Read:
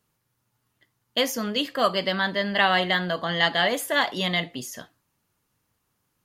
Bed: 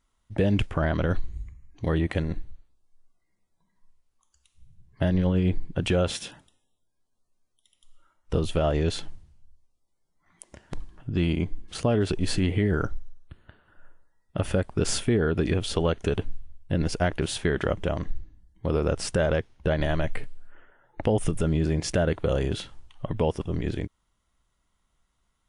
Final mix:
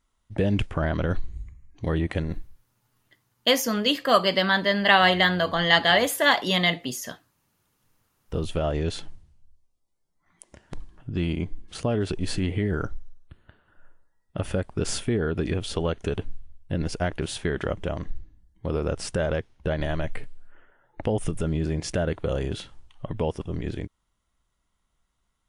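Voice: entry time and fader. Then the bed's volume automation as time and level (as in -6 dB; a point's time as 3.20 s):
2.30 s, +3.0 dB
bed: 2.36 s -0.5 dB
2.76 s -20 dB
7.99 s -20 dB
8.40 s -2 dB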